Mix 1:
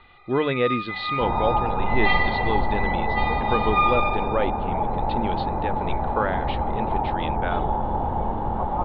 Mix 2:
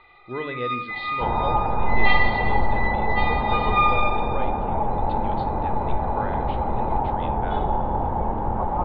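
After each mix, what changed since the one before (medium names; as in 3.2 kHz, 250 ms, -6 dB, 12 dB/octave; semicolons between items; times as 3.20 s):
speech -11.5 dB; reverb: on, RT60 0.70 s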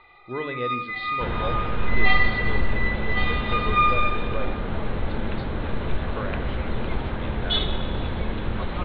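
second sound: remove resonant low-pass 850 Hz, resonance Q 9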